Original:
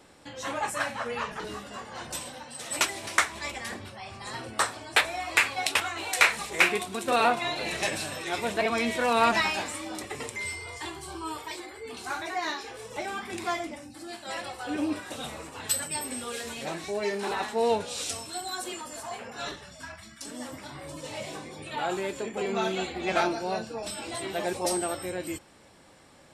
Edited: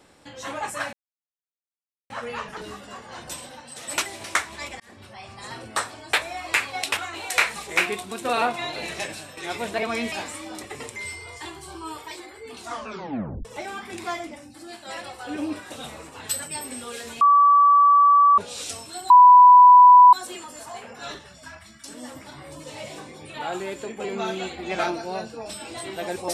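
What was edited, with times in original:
0:00.93: splice in silence 1.17 s
0:03.63–0:03.97: fade in
0:07.66–0:08.20: fade out, to −8.5 dB
0:08.95–0:09.52: remove
0:12.00: tape stop 0.85 s
0:16.61–0:17.78: beep over 1,150 Hz −11.5 dBFS
0:18.50: insert tone 990 Hz −6.5 dBFS 1.03 s

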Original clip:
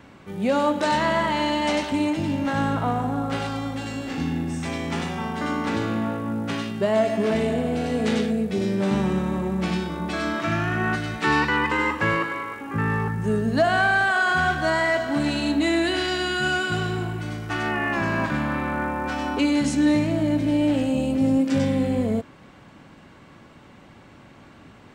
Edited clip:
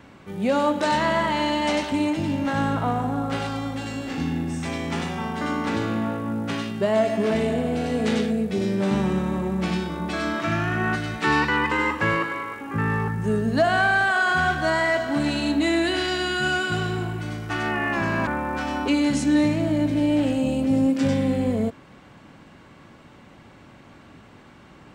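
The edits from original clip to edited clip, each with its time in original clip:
0:18.27–0:18.78: remove

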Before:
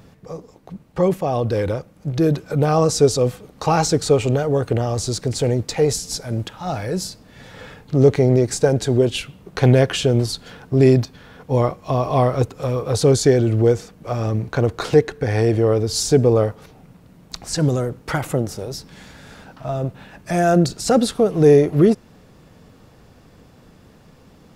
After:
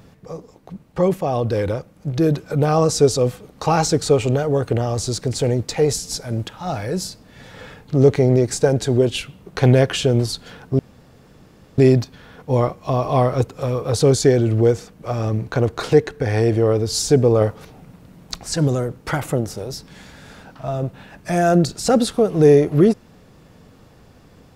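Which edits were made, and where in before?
0:10.79: splice in room tone 0.99 s
0:16.42–0:17.39: clip gain +3 dB

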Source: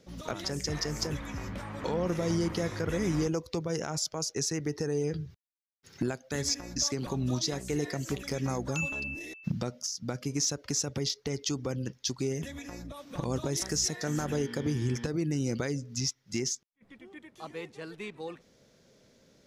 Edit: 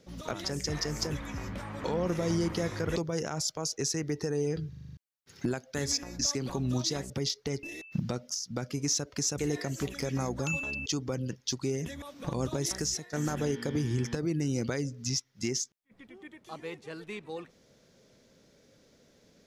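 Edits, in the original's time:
0:02.96–0:03.53: remove
0:05.26: stutter in place 0.04 s, 7 plays
0:07.67–0:09.15: swap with 0:10.90–0:11.43
0:12.59–0:12.93: remove
0:13.68–0:14.04: fade out, to −15 dB

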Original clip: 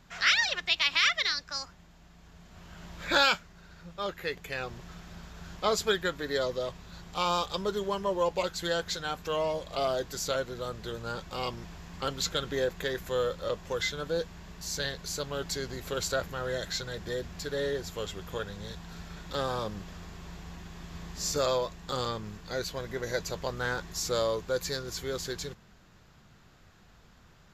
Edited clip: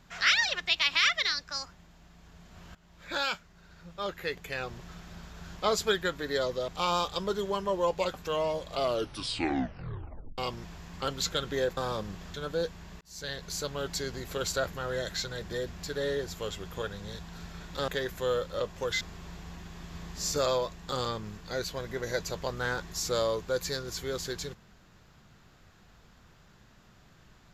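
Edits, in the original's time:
0:02.75–0:04.14: fade in linear, from −18 dB
0:06.68–0:07.06: remove
0:08.52–0:09.14: remove
0:09.80: tape stop 1.58 s
0:12.77–0:13.90: swap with 0:19.44–0:20.01
0:14.57–0:15.02: fade in

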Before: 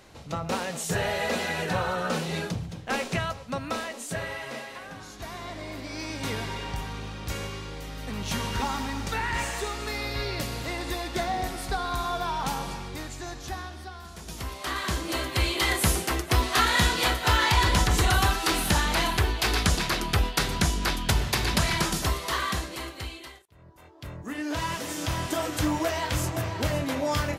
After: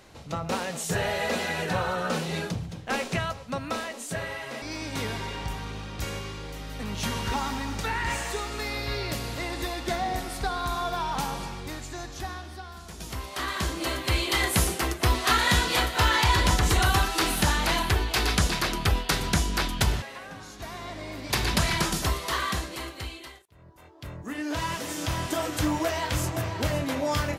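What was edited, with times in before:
0:04.62–0:05.90: move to 0:21.30

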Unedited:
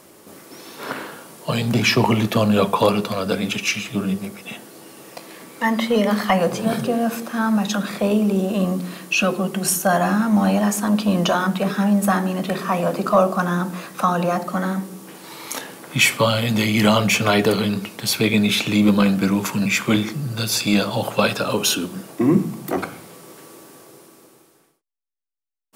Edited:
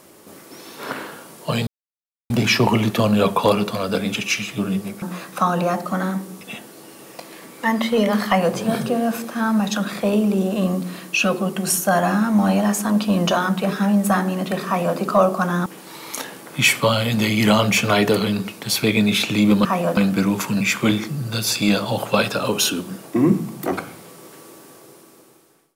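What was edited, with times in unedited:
0:01.67: splice in silence 0.63 s
0:12.64–0:12.96: duplicate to 0:19.02
0:13.64–0:15.03: move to 0:04.39

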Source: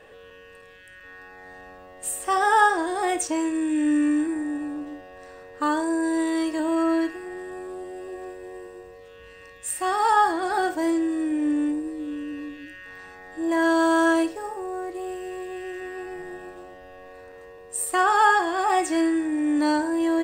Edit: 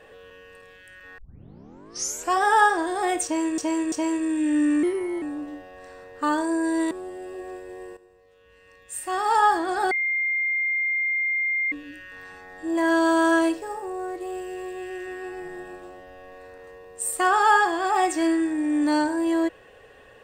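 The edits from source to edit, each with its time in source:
0:01.18: tape start 1.20 s
0:03.24–0:03.58: repeat, 3 plays
0:04.15–0:04.61: play speed 118%
0:06.30–0:07.65: remove
0:08.71–0:10.10: fade in quadratic, from −13 dB
0:10.65–0:12.46: beep over 2,110 Hz −21.5 dBFS

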